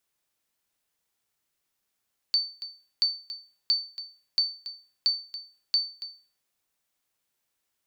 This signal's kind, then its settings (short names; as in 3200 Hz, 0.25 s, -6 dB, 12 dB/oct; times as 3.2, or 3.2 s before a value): sonar ping 4540 Hz, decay 0.38 s, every 0.68 s, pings 6, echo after 0.28 s, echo -14 dB -16 dBFS